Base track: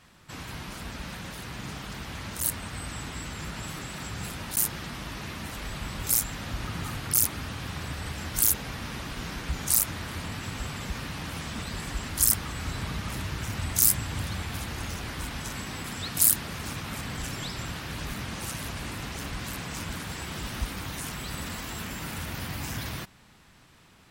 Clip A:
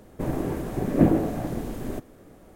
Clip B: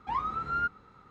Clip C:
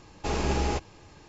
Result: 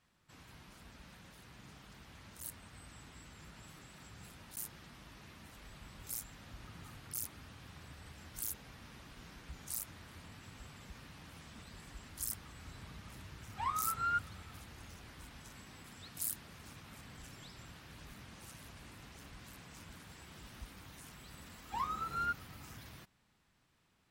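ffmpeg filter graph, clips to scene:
-filter_complex "[2:a]asplit=2[a][b];[0:a]volume=-18dB[c];[a]tiltshelf=f=970:g=-6.5[d];[b]bass=f=250:g=0,treble=f=4k:g=15[e];[d]atrim=end=1.1,asetpts=PTS-STARTPTS,volume=-6dB,afade=t=in:d=0.004:c=hsin,afade=t=out:st=1.096:d=0.004:c=hsin,adelay=13510[f];[e]atrim=end=1.1,asetpts=PTS-STARTPTS,volume=-6.5dB,afade=t=in:d=0.004:c=hsin,afade=t=out:st=1.096:d=0.004:c=hsin,adelay=21650[g];[c][f][g]amix=inputs=3:normalize=0"

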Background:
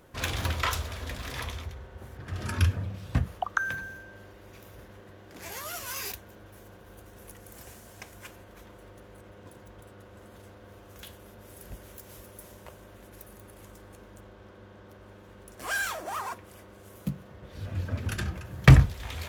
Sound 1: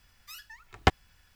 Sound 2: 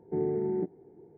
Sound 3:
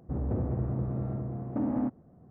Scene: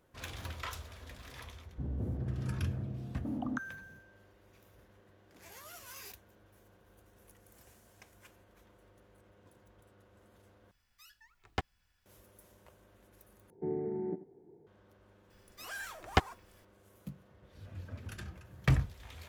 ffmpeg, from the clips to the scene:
-filter_complex "[1:a]asplit=2[a][b];[0:a]volume=-13dB[c];[3:a]lowshelf=f=420:g=11.5[d];[2:a]aecho=1:1:85:0.168[e];[c]asplit=3[f][g][h];[f]atrim=end=10.714[i];[a]atrim=end=1.35,asetpts=PTS-STARTPTS,volume=-13dB[j];[g]atrim=start=12.056:end=13.504[k];[e]atrim=end=1.17,asetpts=PTS-STARTPTS,volume=-5.5dB[l];[h]atrim=start=14.666[m];[d]atrim=end=2.3,asetpts=PTS-STARTPTS,volume=-16dB,afade=t=in:d=0.004:c=hsin,afade=t=out:st=2.296:d=0.004:c=hsin,adelay=1690[n];[b]atrim=end=1.35,asetpts=PTS-STARTPTS,volume=-4.5dB,afade=t=in:d=0.004:c=hsin,afade=t=out:st=1.346:d=0.004:c=hsin,adelay=15300[o];[i][j]acrossfade=d=0.004:c1=hsin:c2=hsin[p];[p][k]acrossfade=d=0.004:c1=hsin:c2=hsin[q];[q][l]acrossfade=d=0.004:c1=hsin:c2=hsin[r];[r][m]acrossfade=d=0.004:c1=hsin:c2=hsin[s];[s][n][o]amix=inputs=3:normalize=0"

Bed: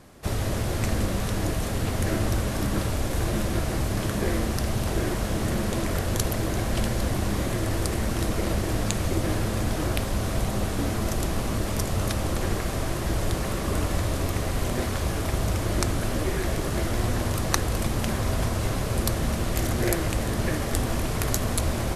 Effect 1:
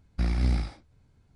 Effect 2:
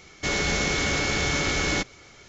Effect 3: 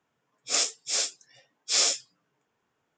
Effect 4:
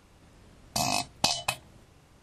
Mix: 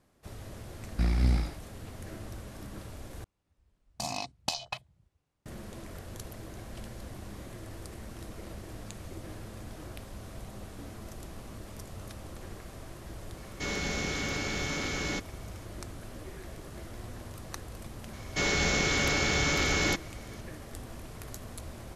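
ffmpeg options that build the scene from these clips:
-filter_complex "[2:a]asplit=2[a][b];[0:a]volume=-17.5dB[c];[4:a]afwtdn=0.0141[d];[a]equalizer=f=230:w=1.5:g=4[e];[c]asplit=2[f][g];[f]atrim=end=3.244[h];[d]atrim=end=2.22,asetpts=PTS-STARTPTS,volume=-7dB[i];[g]atrim=start=5.456[j];[1:a]atrim=end=1.35,asetpts=PTS-STARTPTS,volume=-0.5dB,afade=t=in:d=0.004:c=hsin,afade=t=out:st=1.346:d=0.004:c=hsin,adelay=800[k];[e]atrim=end=2.28,asetpts=PTS-STARTPTS,volume=-9dB,afade=t=in:d=0.004:c=hsin,afade=t=out:st=2.276:d=0.004:c=hsin,adelay=13370[l];[b]atrim=end=2.28,asetpts=PTS-STARTPTS,volume=-2.5dB,afade=t=in:d=0.004:c=hsin,afade=t=out:st=2.276:d=0.004:c=hsin,adelay=18130[m];[h][i]acrossfade=d=0.004:c1=hsin:c2=hsin[n];[n][j]acrossfade=d=0.004:c1=hsin:c2=hsin[o];[o][k][l][m]amix=inputs=4:normalize=0"

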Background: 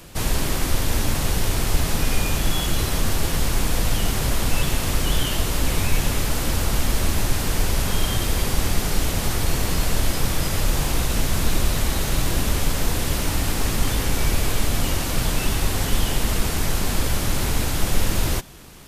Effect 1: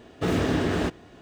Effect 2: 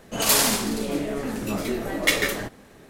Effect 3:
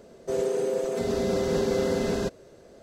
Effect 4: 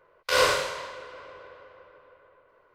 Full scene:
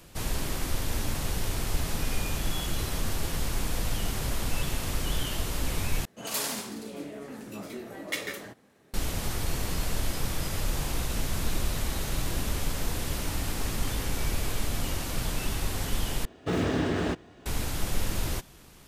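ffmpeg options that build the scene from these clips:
-filter_complex "[0:a]volume=-8.5dB[a];[2:a]highpass=95[b];[a]asplit=3[c][d][e];[c]atrim=end=6.054[f];[b]atrim=end=2.89,asetpts=PTS-STARTPTS,volume=-12dB[g];[d]atrim=start=8.936:end=16.254[h];[1:a]atrim=end=1.21,asetpts=PTS-STARTPTS,volume=-3dB[i];[e]atrim=start=17.456[j];[f][g]acrossfade=d=0.004:c1=hsin:c2=hsin[k];[k][h]acrossfade=d=0.004:c1=hsin:c2=hsin[l];[l][i]acrossfade=d=0.004:c1=hsin:c2=hsin[m];[m][j]acrossfade=d=0.004:c1=hsin:c2=hsin"

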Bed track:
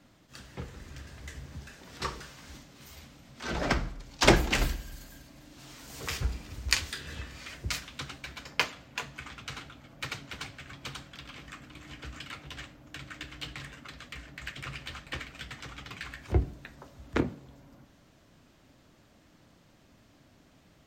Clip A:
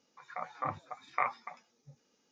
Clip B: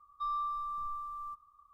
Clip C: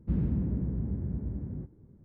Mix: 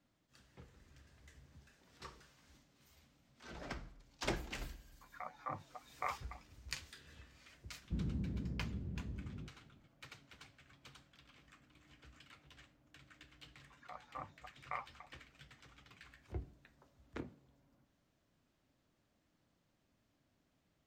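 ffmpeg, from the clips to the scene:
-filter_complex "[1:a]asplit=2[a][b];[0:a]volume=-18dB[c];[a]acrossover=split=760[d][e];[d]aeval=exprs='val(0)*(1-0.5/2+0.5/2*cos(2*PI*4.2*n/s))':c=same[f];[e]aeval=exprs='val(0)*(1-0.5/2-0.5/2*cos(2*PI*4.2*n/s))':c=same[g];[f][g]amix=inputs=2:normalize=0,atrim=end=2.31,asetpts=PTS-STARTPTS,volume=-5.5dB,afade=t=in:d=0.004:c=hsin,afade=t=out:st=2.306:d=0.004:c=hsin,adelay=4840[h];[3:a]atrim=end=2.04,asetpts=PTS-STARTPTS,volume=-10.5dB,afade=t=in:d=0.004:c=hsin,afade=t=out:st=2.036:d=0.004:c=hsin,adelay=7830[i];[b]atrim=end=2.31,asetpts=PTS-STARTPTS,volume=-12dB,afade=t=in:d=0.004:c=hsin,afade=t=out:st=2.306:d=0.004:c=hsin,adelay=13530[j];[c][h][i][j]amix=inputs=4:normalize=0"

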